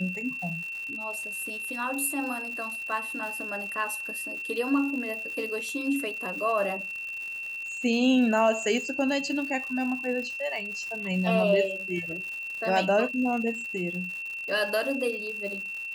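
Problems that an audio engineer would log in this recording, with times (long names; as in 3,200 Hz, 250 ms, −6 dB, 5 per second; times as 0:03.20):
surface crackle 190 per second −36 dBFS
whistle 2,700 Hz −33 dBFS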